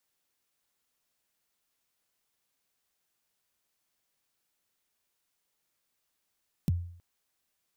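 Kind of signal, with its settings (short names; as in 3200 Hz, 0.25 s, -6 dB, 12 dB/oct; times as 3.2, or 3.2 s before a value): kick drum length 0.32 s, from 220 Hz, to 87 Hz, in 24 ms, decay 0.58 s, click on, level -20.5 dB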